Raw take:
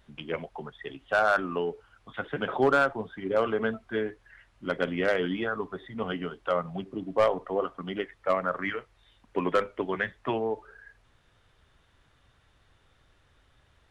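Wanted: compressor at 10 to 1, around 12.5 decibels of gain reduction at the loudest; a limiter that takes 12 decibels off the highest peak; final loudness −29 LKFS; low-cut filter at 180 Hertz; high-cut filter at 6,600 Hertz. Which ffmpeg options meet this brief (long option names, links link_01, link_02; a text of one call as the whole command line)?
ffmpeg -i in.wav -af "highpass=180,lowpass=6600,acompressor=threshold=-31dB:ratio=10,volume=12dB,alimiter=limit=-17.5dB:level=0:latency=1" out.wav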